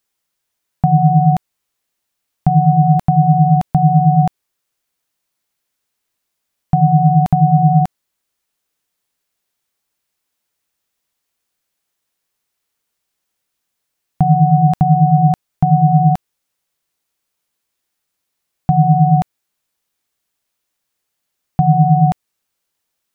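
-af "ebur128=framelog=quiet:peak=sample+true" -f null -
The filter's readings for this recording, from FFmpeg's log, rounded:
Integrated loudness:
  I:         -13.2 LUFS
  Threshold: -23.4 LUFS
Loudness range:
  LRA:         4.8 LU
  Threshold: -36.7 LUFS
  LRA low:   -19.1 LUFS
  LRA high:  -14.4 LUFS
Sample peak:
  Peak:       -1.5 dBFS
True peak:
  Peak:       -1.5 dBFS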